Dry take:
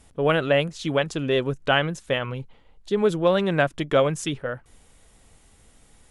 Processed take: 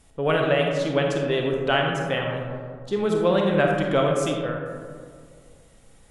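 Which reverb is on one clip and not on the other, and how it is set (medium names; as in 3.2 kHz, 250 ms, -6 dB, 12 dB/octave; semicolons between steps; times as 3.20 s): algorithmic reverb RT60 2.1 s, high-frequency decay 0.3×, pre-delay 5 ms, DRR 0.5 dB; trim -2.5 dB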